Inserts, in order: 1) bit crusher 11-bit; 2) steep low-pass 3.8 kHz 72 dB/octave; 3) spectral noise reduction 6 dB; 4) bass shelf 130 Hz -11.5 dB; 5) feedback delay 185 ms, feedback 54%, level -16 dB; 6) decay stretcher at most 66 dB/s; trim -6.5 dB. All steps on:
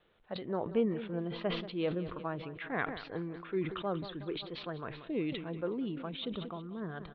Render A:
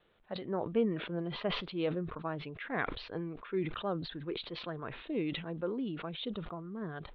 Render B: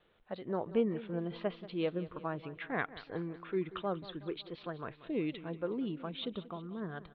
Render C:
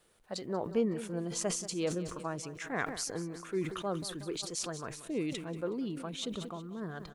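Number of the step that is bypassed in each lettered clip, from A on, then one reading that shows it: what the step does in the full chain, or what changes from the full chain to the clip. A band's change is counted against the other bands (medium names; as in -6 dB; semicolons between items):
5, 4 kHz band +2.0 dB; 6, 4 kHz band -2.5 dB; 2, 4 kHz band +2.5 dB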